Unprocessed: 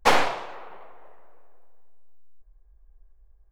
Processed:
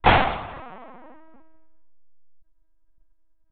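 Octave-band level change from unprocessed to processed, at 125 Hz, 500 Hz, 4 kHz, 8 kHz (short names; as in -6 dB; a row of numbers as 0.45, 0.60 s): +15.5 dB, +1.0 dB, +1.0 dB, under -40 dB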